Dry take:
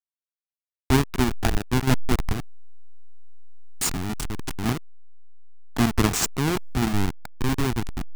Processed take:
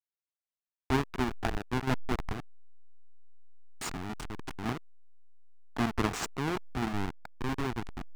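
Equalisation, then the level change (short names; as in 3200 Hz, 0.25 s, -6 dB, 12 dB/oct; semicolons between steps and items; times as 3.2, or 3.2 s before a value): LPF 1800 Hz 6 dB/oct; low shelf 350 Hz -9 dB; -3.0 dB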